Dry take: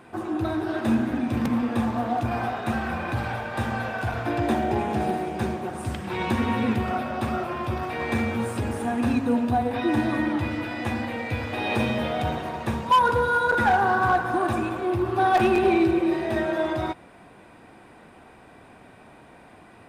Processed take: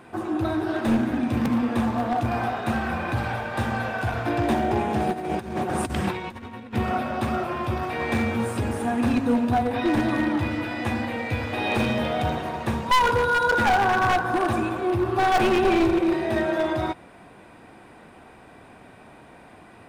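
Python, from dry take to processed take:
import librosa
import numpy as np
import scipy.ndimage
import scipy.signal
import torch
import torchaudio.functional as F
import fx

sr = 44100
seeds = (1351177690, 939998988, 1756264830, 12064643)

y = np.minimum(x, 2.0 * 10.0 ** (-18.0 / 20.0) - x)
y = fx.over_compress(y, sr, threshold_db=-32.0, ratio=-0.5, at=(5.12, 6.73), fade=0.02)
y = y * librosa.db_to_amplitude(1.5)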